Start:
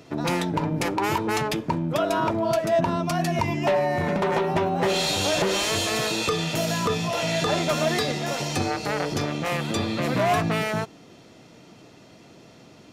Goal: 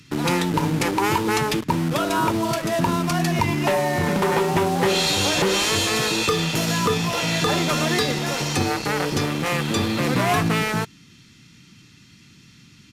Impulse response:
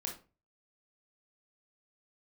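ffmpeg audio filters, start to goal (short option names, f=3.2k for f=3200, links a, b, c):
-filter_complex "[0:a]equalizer=f=640:w=5.6:g=-10,acrossover=split=250|1400[a][b][c];[b]acrusher=bits=5:mix=0:aa=0.000001[d];[a][d][c]amix=inputs=3:normalize=0,aresample=32000,aresample=44100,volume=4dB"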